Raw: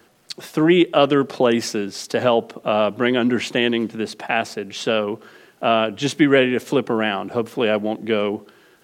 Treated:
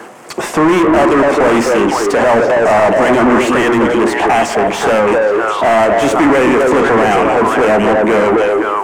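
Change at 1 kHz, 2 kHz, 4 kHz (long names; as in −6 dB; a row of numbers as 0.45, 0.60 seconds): +13.5, +9.5, +1.0 decibels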